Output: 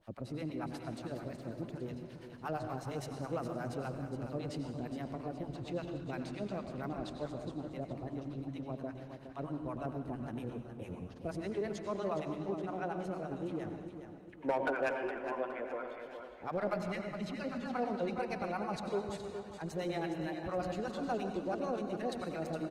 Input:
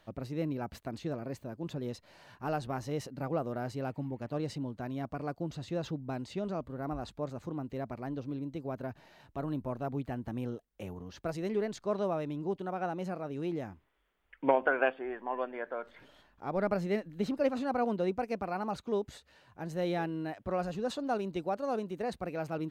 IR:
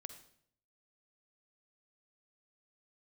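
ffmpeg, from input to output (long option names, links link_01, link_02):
-filter_complex "[0:a]asplit=3[link_01][link_02][link_03];[link_01]afade=type=out:start_time=5.66:duration=0.02[link_04];[link_02]adynamicequalizer=threshold=0.001:dfrequency=2400:dqfactor=1.1:tfrequency=2400:tqfactor=1.1:attack=5:release=100:ratio=0.375:range=2:mode=boostabove:tftype=bell,afade=type=in:start_time=5.66:duration=0.02,afade=type=out:start_time=7.14:duration=0.02[link_05];[link_03]afade=type=in:start_time=7.14:duration=0.02[link_06];[link_04][link_05][link_06]amix=inputs=3:normalize=0,acrossover=split=690[link_07][link_08];[link_07]aeval=exprs='val(0)*(1-1/2+1/2*cos(2*PI*8.7*n/s))':channel_layout=same[link_09];[link_08]aeval=exprs='val(0)*(1-1/2-1/2*cos(2*PI*8.7*n/s))':channel_layout=same[link_10];[link_09][link_10]amix=inputs=2:normalize=0,asplit=3[link_11][link_12][link_13];[link_11]afade=type=out:start_time=16.74:duration=0.02[link_14];[link_12]equalizer=frequency=470:width_type=o:width=1.3:gain=-12.5,afade=type=in:start_time=16.74:duration=0.02,afade=type=out:start_time=17.73:duration=0.02[link_15];[link_13]afade=type=in:start_time=17.73:duration=0.02[link_16];[link_14][link_15][link_16]amix=inputs=3:normalize=0,asplit=2[link_17][link_18];[link_18]asoftclip=type=tanh:threshold=-30.5dB,volume=-6dB[link_19];[link_17][link_19]amix=inputs=2:normalize=0[link_20];[1:a]atrim=start_sample=2205,asetrate=22932,aresample=44100[link_21];[link_20][link_21]afir=irnorm=-1:irlink=0,acrossover=split=390[link_22][link_23];[link_22]alimiter=level_in=11.5dB:limit=-24dB:level=0:latency=1:release=36,volume=-11.5dB[link_24];[link_23]volume=27.5dB,asoftclip=hard,volume=-27.5dB[link_25];[link_24][link_25]amix=inputs=2:normalize=0,aecho=1:1:415|830|1245|1660|2075:0.355|0.153|0.0656|0.0282|0.0121,volume=1dB" -ar 48000 -c:a libopus -b:a 24k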